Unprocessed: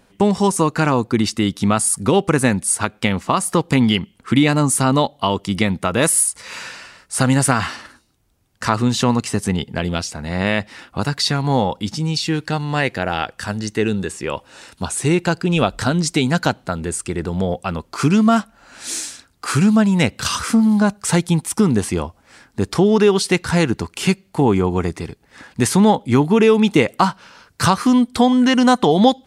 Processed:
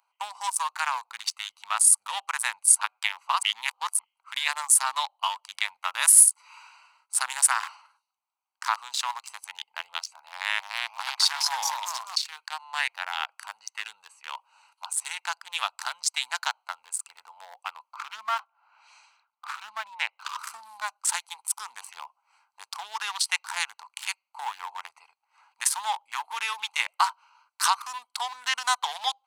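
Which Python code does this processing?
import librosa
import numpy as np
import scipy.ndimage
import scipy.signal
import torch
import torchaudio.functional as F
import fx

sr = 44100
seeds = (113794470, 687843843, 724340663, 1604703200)

y = fx.echo_pitch(x, sr, ms=326, semitones=2, count=3, db_per_echo=-3.0, at=(10.12, 12.16))
y = fx.lowpass(y, sr, hz=3000.0, slope=12, at=(17.93, 20.39))
y = fx.edit(y, sr, fx.reverse_span(start_s=3.43, length_s=0.56), tone=tone)
y = fx.wiener(y, sr, points=25)
y = scipy.signal.sosfilt(scipy.signal.ellip(4, 1.0, 60, 900.0, 'highpass', fs=sr, output='sos'), y)
y = fx.high_shelf(y, sr, hz=5500.0, db=10.5)
y = F.gain(torch.from_numpy(y), -4.5).numpy()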